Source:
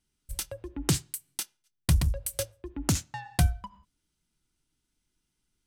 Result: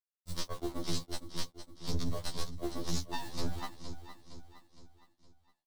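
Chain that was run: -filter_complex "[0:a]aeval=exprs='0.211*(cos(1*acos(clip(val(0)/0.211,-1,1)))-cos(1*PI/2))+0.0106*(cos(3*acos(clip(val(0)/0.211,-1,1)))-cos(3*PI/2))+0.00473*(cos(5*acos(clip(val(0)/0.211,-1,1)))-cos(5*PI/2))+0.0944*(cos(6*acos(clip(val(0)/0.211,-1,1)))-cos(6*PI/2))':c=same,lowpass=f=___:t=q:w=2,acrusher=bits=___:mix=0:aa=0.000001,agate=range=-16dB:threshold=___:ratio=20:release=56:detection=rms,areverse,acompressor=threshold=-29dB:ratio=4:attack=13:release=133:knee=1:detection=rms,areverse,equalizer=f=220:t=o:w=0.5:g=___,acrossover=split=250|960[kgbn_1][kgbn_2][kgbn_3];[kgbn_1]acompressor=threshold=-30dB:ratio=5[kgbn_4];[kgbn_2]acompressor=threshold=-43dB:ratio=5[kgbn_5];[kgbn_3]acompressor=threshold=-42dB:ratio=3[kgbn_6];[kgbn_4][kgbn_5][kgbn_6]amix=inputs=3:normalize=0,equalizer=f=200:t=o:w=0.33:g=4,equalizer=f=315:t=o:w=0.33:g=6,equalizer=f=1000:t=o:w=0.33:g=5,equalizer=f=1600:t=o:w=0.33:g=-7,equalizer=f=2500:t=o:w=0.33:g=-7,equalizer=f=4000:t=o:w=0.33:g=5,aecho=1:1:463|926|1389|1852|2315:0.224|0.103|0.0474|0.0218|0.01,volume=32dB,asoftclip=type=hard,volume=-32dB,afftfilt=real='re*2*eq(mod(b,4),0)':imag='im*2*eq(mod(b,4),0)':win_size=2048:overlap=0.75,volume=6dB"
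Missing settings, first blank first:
5200, 7, -52dB, 2.5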